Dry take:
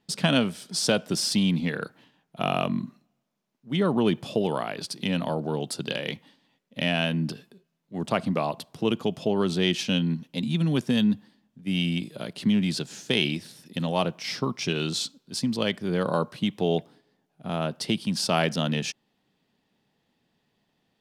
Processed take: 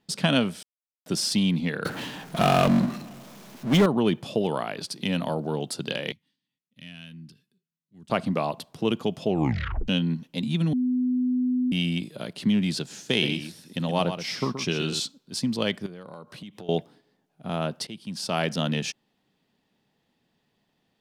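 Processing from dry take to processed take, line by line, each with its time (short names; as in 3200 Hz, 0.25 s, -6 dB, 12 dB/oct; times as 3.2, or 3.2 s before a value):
0.63–1.06 mute
1.85–3.86 power-law curve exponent 0.5
5.05–5.53 high shelf 9400 Hz +5.5 dB
6.12–8.1 passive tone stack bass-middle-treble 6-0-2
9.28 tape stop 0.60 s
10.73–11.72 bleep 251 Hz -21 dBFS
12.97–15 echo 0.125 s -9 dB
15.86–16.69 compressor 8:1, threshold -38 dBFS
17.87–18.62 fade in linear, from -17 dB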